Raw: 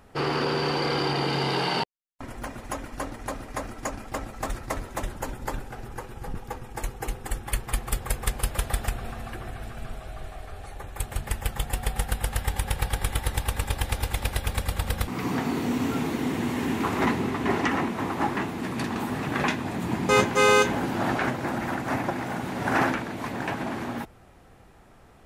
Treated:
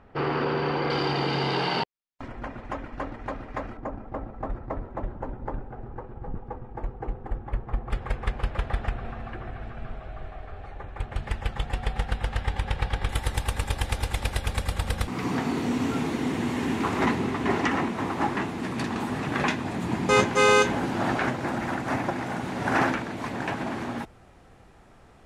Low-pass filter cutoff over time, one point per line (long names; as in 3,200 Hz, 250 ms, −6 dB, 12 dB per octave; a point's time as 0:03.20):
2,500 Hz
from 0:00.90 4,900 Hz
from 0:02.28 2,500 Hz
from 0:03.77 1,000 Hz
from 0:07.90 2,400 Hz
from 0:11.16 3,900 Hz
from 0:13.09 9,400 Hz